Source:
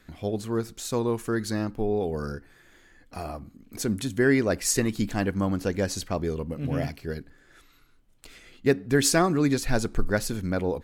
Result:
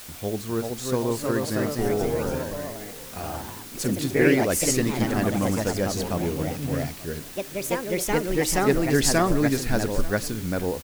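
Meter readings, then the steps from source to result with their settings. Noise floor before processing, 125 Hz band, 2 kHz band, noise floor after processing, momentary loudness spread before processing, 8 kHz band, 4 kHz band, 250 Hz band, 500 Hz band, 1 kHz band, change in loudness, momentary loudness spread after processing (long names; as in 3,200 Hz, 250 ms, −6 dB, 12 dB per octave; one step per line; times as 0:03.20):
−58 dBFS, +2.0 dB, +2.5 dB, −40 dBFS, 15 LU, +3.0 dB, +2.5 dB, +2.0 dB, +2.5 dB, +4.0 dB, +2.0 dB, 12 LU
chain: single-tap delay 885 ms −19.5 dB
delay with pitch and tempo change per echo 415 ms, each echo +2 semitones, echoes 3
background noise white −42 dBFS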